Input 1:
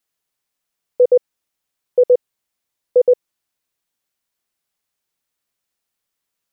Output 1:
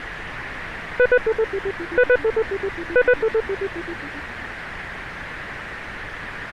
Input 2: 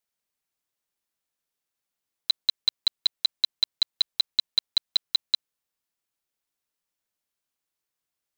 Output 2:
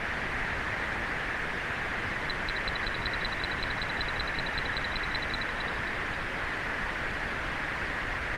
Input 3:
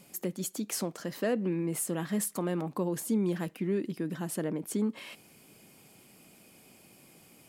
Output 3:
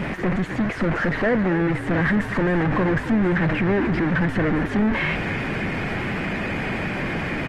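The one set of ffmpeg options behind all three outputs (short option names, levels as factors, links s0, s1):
-filter_complex "[0:a]aeval=exprs='val(0)+0.5*0.0668*sgn(val(0))':c=same,lowshelf=f=110:g=11.5,asplit=2[s0][s1];[s1]asplit=5[s2][s3][s4][s5][s6];[s2]adelay=266,afreqshift=-52,volume=0.266[s7];[s3]adelay=532,afreqshift=-104,volume=0.123[s8];[s4]adelay=798,afreqshift=-156,volume=0.0562[s9];[s5]adelay=1064,afreqshift=-208,volume=0.026[s10];[s6]adelay=1330,afreqshift=-260,volume=0.0119[s11];[s7][s8][s9][s10][s11]amix=inputs=5:normalize=0[s12];[s0][s12]amix=inputs=2:normalize=0,aeval=exprs='(tanh(7.94*val(0)+0.3)-tanh(0.3))/7.94':c=same,lowpass=f=1800:t=q:w=2.9,equalizer=f=1300:w=3.5:g=-2.5,volume=1.68" -ar 48000 -c:a libopus -b:a 24k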